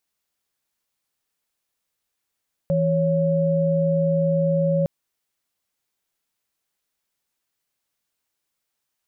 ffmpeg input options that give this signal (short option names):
-f lavfi -i "aevalsrc='0.1*(sin(2*PI*164.81*t)+sin(2*PI*554.37*t))':d=2.16:s=44100"